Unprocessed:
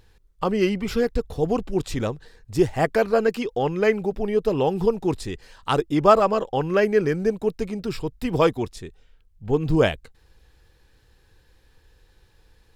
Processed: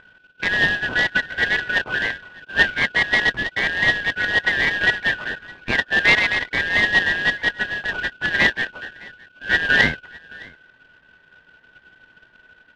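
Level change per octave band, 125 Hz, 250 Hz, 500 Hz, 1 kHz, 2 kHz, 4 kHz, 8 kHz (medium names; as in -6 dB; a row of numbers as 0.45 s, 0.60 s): -6.5 dB, -8.5 dB, -12.0 dB, -4.5 dB, +18.0 dB, +12.5 dB, no reading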